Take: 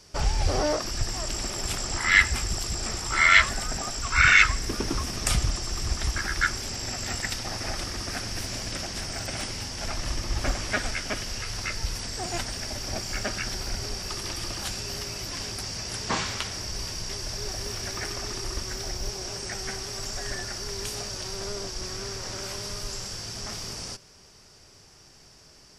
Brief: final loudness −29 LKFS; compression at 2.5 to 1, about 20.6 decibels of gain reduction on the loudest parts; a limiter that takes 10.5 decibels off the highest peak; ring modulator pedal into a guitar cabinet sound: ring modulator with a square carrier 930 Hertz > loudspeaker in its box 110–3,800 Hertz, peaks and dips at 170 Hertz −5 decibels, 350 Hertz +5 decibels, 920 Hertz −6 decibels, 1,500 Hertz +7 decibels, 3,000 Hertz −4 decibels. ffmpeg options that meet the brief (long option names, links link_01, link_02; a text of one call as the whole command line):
ffmpeg -i in.wav -af "acompressor=threshold=-45dB:ratio=2.5,alimiter=level_in=7dB:limit=-24dB:level=0:latency=1,volume=-7dB,aeval=exprs='val(0)*sgn(sin(2*PI*930*n/s))':channel_layout=same,highpass=110,equalizer=frequency=170:width_type=q:width=4:gain=-5,equalizer=frequency=350:width_type=q:width=4:gain=5,equalizer=frequency=920:width_type=q:width=4:gain=-6,equalizer=frequency=1500:width_type=q:width=4:gain=7,equalizer=frequency=3000:width_type=q:width=4:gain=-4,lowpass=frequency=3800:width=0.5412,lowpass=frequency=3800:width=1.3066,volume=15.5dB" out.wav